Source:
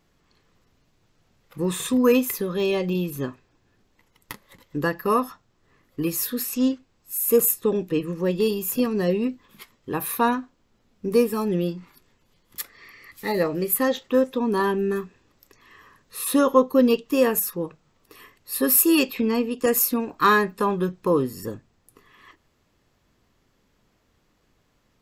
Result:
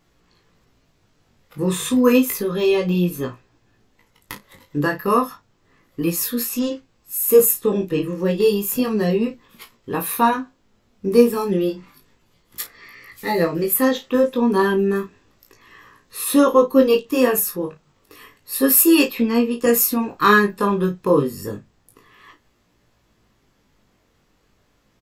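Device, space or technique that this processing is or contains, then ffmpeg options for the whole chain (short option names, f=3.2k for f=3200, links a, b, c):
double-tracked vocal: -filter_complex "[0:a]asplit=2[a][b];[b]adelay=34,volume=-11dB[c];[a][c]amix=inputs=2:normalize=0,flanger=delay=17:depth=3.9:speed=0.31,volume=6.5dB"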